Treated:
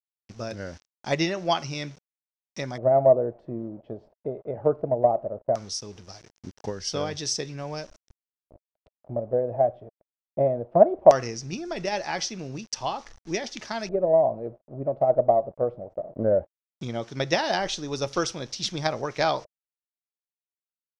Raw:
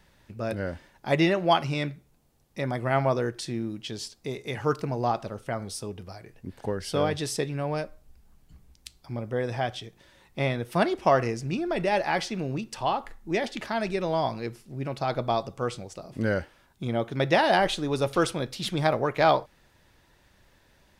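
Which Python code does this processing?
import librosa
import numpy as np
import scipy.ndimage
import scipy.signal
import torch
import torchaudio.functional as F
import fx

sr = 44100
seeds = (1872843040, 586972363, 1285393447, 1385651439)

y = np.where(np.abs(x) >= 10.0 ** (-45.5 / 20.0), x, 0.0)
y = fx.filter_lfo_lowpass(y, sr, shape='square', hz=0.18, low_hz=620.0, high_hz=5800.0, q=6.0)
y = fx.transient(y, sr, attack_db=5, sustain_db=1)
y = y * 10.0 ** (-5.5 / 20.0)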